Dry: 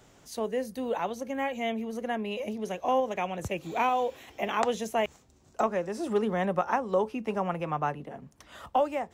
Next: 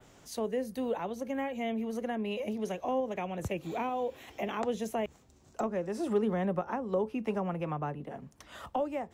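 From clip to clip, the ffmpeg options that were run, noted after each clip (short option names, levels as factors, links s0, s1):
-filter_complex "[0:a]adynamicequalizer=threshold=0.002:dfrequency=6100:dqfactor=1:tfrequency=6100:tqfactor=1:attack=5:release=100:ratio=0.375:range=2:mode=cutabove:tftype=bell,acrossover=split=470[s0][s1];[s1]acompressor=threshold=0.0126:ratio=3[s2];[s0][s2]amix=inputs=2:normalize=0"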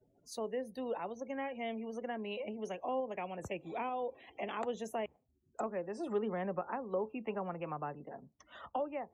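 -af "afftdn=nr=35:nf=-51,lowshelf=f=220:g=-11,volume=0.708"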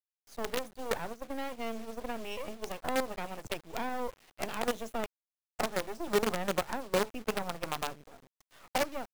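-af "acrusher=bits=6:dc=4:mix=0:aa=0.000001,agate=range=0.398:threshold=0.00562:ratio=16:detection=peak,volume=1.88"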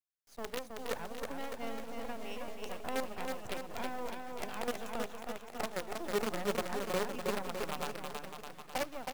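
-af "aecho=1:1:320|608|867.2|1100|1310:0.631|0.398|0.251|0.158|0.1,volume=0.531"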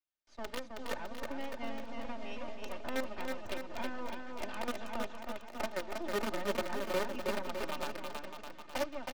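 -filter_complex "[0:a]aecho=1:1:3.3:0.59,acrossover=split=150|530|6200[s0][s1][s2][s3];[s3]acrusher=bits=5:dc=4:mix=0:aa=0.000001[s4];[s0][s1][s2][s4]amix=inputs=4:normalize=0,volume=0.891"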